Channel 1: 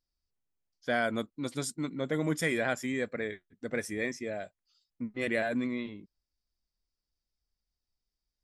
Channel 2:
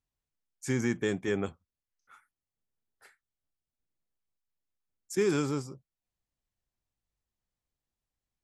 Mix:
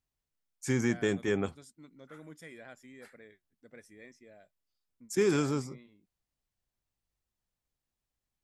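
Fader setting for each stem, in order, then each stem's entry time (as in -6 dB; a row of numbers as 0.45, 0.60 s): -19.5, +0.5 dB; 0.00, 0.00 s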